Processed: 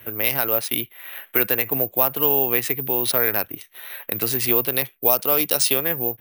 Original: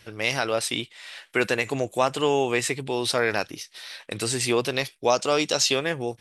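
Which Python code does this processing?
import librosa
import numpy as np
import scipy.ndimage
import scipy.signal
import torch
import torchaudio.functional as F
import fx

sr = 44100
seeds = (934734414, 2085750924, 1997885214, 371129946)

y = fx.wiener(x, sr, points=9)
y = (np.kron(scipy.signal.resample_poly(y, 1, 3), np.eye(3)[0]) * 3)[:len(y)]
y = fx.band_squash(y, sr, depth_pct=40)
y = y * 10.0 ** (-1.0 / 20.0)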